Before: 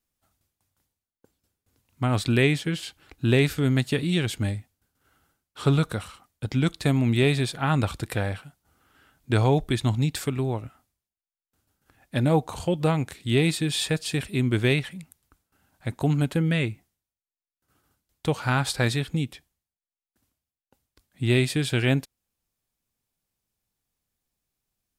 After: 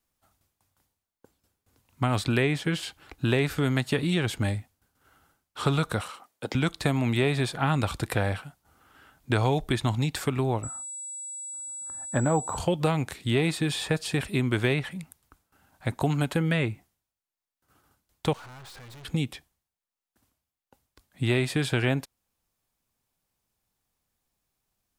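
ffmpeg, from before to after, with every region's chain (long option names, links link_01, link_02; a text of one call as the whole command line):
ffmpeg -i in.wav -filter_complex "[0:a]asettb=1/sr,asplit=3[link_01][link_02][link_03];[link_01]atrim=end=6.014[link_04];[link_02]atrim=start=6.01:end=6.55,asetpts=PTS-STARTPTS,afade=type=in:duration=0.004:curve=qsin,afade=type=out:start_time=0.536:duration=0.004:curve=qsin,highpass=260,equalizer=frequency=510:width_type=o:width=0.79:gain=4[link_05];[link_03]atrim=start=6.546[link_06];[link_04][link_05]acrossfade=duration=0.004:curve1=hsin:curve2=qsin[link_07];[link_07][link_06]acrossfade=duration=0.004:curve1=qsin:curve2=hsin,asettb=1/sr,asplit=3[link_08][link_09][link_10];[link_08]atrim=end=10.634[link_11];[link_09]atrim=start=10.63:end=12.58,asetpts=PTS-STARTPTS,afade=type=in:duration=0.004:curve=qsin,afade=type=out:start_time=1.946:duration=0.004:curve=qsin,highshelf=frequency=2000:width_type=q:width=1.5:gain=-11.5,aeval=exprs='val(0)+0.0141*sin(2*PI*7800*n/s)':channel_layout=same[link_12];[link_10]atrim=start=12.576[link_13];[link_11][link_12]acrossfade=duration=0.004:curve1=hsin:curve2=qsin[link_14];[link_14][link_13]acrossfade=duration=0.004:curve1=qsin:curve2=hsin,asettb=1/sr,asplit=3[link_15][link_16][link_17];[link_15]atrim=end=18.334[link_18];[link_16]atrim=start=18.33:end=19.05,asetpts=PTS-STARTPTS,afade=type=in:duration=0.004:curve=qsin,afade=type=out:start_time=0.716:duration=0.004:curve=qsin,highshelf=frequency=5800:gain=-11,acompressor=threshold=-30dB:ratio=3:attack=3.2:release=140:knee=1:detection=peak,aeval=exprs='(tanh(251*val(0)+0.35)-tanh(0.35))/251':channel_layout=same[link_19];[link_17]atrim=start=19.046[link_20];[link_18][link_19]acrossfade=duration=0.004:curve1=hsin:curve2=qsin[link_21];[link_21][link_20]acrossfade=duration=0.004:curve1=qsin:curve2=hsin,equalizer=frequency=930:width_type=o:width=1.4:gain=4.5,acrossover=split=540|1900[link_22][link_23][link_24];[link_22]acompressor=threshold=-26dB:ratio=4[link_25];[link_23]acompressor=threshold=-31dB:ratio=4[link_26];[link_24]acompressor=threshold=-35dB:ratio=4[link_27];[link_25][link_26][link_27]amix=inputs=3:normalize=0,volume=2dB" out.wav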